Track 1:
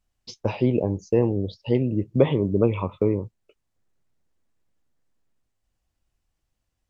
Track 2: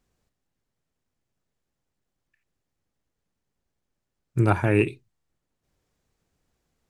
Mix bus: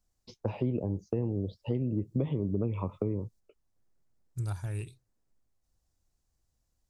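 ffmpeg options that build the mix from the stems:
-filter_complex "[0:a]highshelf=f=2200:g=-9,acrossover=split=260|3000[s0][s1][s2];[s1]acompressor=threshold=0.0398:ratio=6[s3];[s0][s3][s2]amix=inputs=3:normalize=0,volume=0.794,asplit=2[s4][s5];[1:a]asubboost=boost=12:cutoff=87,aexciter=amount=15.4:drive=4.4:freq=3800,volume=0.266[s6];[s5]apad=whole_len=304214[s7];[s6][s7]sidechaingate=range=0.355:threshold=0.00282:ratio=16:detection=peak[s8];[s4][s8]amix=inputs=2:normalize=0,highshelf=f=5100:g=-10,acompressor=threshold=0.0355:ratio=2"

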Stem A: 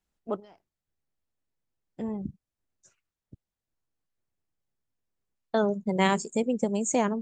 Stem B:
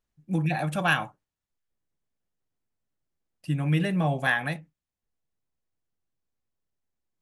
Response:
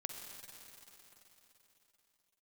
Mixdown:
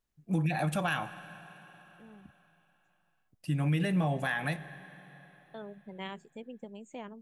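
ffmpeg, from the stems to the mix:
-filter_complex "[0:a]highshelf=f=4200:t=q:w=3:g=-9,volume=0.119[s0];[1:a]highshelf=f=9000:g=3.5,volume=0.708,asplit=3[s1][s2][s3];[s2]volume=0.299[s4];[s3]apad=whole_len=318301[s5];[s0][s5]sidechaincompress=threshold=0.01:ratio=8:attack=16:release=1060[s6];[2:a]atrim=start_sample=2205[s7];[s4][s7]afir=irnorm=-1:irlink=0[s8];[s6][s1][s8]amix=inputs=3:normalize=0,alimiter=limit=0.0891:level=0:latency=1:release=109"

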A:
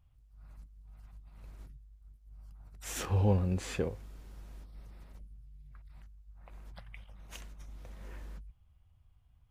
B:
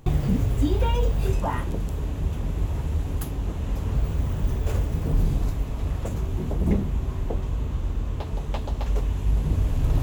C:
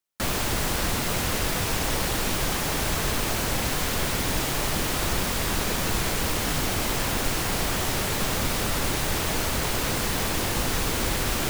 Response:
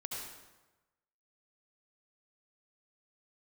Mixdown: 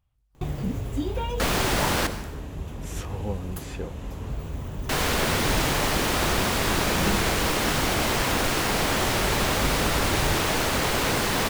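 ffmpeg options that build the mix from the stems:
-filter_complex "[0:a]volume=0.841[s0];[1:a]adelay=350,volume=0.75[s1];[2:a]highshelf=f=5800:g=-7.5,acontrast=62,adelay=1200,volume=0.631,asplit=3[s2][s3][s4];[s2]atrim=end=2.07,asetpts=PTS-STARTPTS,afade=t=out:st=2.066:d=0.004:c=hsin[s5];[s3]atrim=start=2.07:end=4.89,asetpts=PTS-STARTPTS,volume=0[s6];[s4]atrim=start=4.89,asetpts=PTS-STARTPTS,afade=t=in:d=0.004:c=hsin[s7];[s5][s6][s7]concat=n=3:v=0:a=1,asplit=2[s8][s9];[s9]volume=0.447[s10];[3:a]atrim=start_sample=2205[s11];[s10][s11]afir=irnorm=-1:irlink=0[s12];[s0][s1][s8][s12]amix=inputs=4:normalize=0,lowshelf=f=130:g=-8"

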